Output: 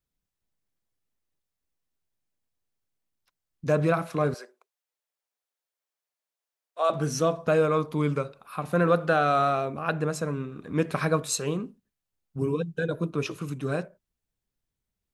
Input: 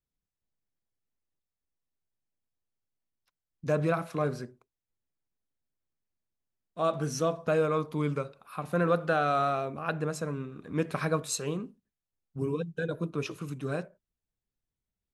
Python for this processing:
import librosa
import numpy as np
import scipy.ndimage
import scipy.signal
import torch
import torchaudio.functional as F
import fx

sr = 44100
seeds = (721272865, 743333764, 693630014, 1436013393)

y = fx.highpass(x, sr, hz=490.0, slope=24, at=(4.34, 6.9))
y = y * librosa.db_to_amplitude(4.0)